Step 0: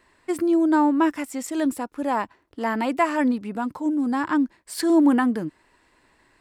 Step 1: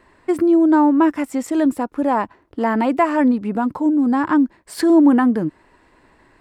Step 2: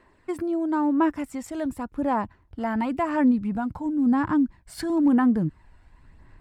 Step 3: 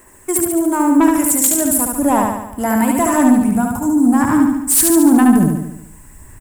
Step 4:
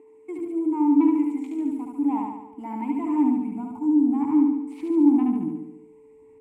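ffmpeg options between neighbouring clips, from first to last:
-filter_complex "[0:a]highshelf=f=2.1k:g=-11,asplit=2[a][b];[b]acompressor=threshold=-27dB:ratio=6,volume=1dB[c];[a][c]amix=inputs=2:normalize=0,volume=3dB"
-af "asubboost=boost=8.5:cutoff=140,aphaser=in_gain=1:out_gain=1:delay=1.4:decay=0.36:speed=0.95:type=sinusoidal,volume=-8.5dB"
-filter_complex "[0:a]aexciter=amount=11:drive=9.7:freq=6.7k,aeval=exprs='0.631*sin(PI/2*3.16*val(0)/0.631)':c=same,asplit=2[a][b];[b]aecho=0:1:72|144|216|288|360|432|504|576:0.708|0.396|0.222|0.124|0.0696|0.039|0.0218|0.0122[c];[a][c]amix=inputs=2:normalize=0,volume=-5dB"
-filter_complex "[0:a]aeval=exprs='val(0)+0.0501*sin(2*PI*440*n/s)':c=same,acrossover=split=4100[a][b];[b]acompressor=threshold=-26dB:ratio=4:attack=1:release=60[c];[a][c]amix=inputs=2:normalize=0,asplit=3[d][e][f];[d]bandpass=f=300:t=q:w=8,volume=0dB[g];[e]bandpass=f=870:t=q:w=8,volume=-6dB[h];[f]bandpass=f=2.24k:t=q:w=8,volume=-9dB[i];[g][h][i]amix=inputs=3:normalize=0,volume=-3.5dB"

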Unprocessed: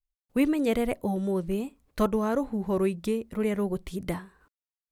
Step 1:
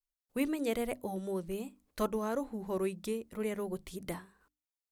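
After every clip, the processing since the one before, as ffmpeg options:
-af "bass=f=250:g=-4,treble=f=4k:g=5,bandreject=f=50:t=h:w=6,bandreject=f=100:t=h:w=6,bandreject=f=150:t=h:w=6,bandreject=f=200:t=h:w=6,bandreject=f=250:t=h:w=6,bandreject=f=300:t=h:w=6,volume=-6.5dB"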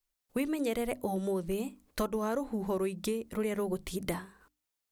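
-af "acompressor=threshold=-36dB:ratio=6,volume=7.5dB"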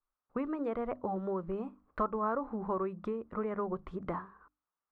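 -af "lowpass=f=1.2k:t=q:w=4.1,volume=-4dB"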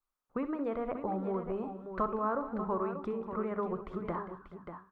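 -af "aecho=1:1:62|187|430|588:0.251|0.168|0.1|0.355"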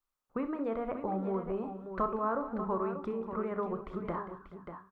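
-filter_complex "[0:a]asplit=2[a][b];[b]adelay=31,volume=-13dB[c];[a][c]amix=inputs=2:normalize=0"

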